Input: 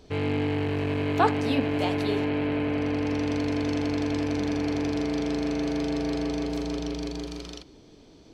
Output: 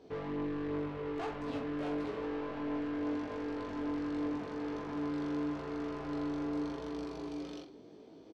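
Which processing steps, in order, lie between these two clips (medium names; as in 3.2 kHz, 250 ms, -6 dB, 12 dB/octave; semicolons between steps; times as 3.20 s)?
high-pass 370 Hz 12 dB/octave; tilt EQ -4 dB/octave; peak limiter -19.5 dBFS, peak gain reduction 11 dB; saturation -33 dBFS, distortion -8 dB; chorus 0.86 Hz, delay 18 ms, depth 3.1 ms; doubling 47 ms -8.5 dB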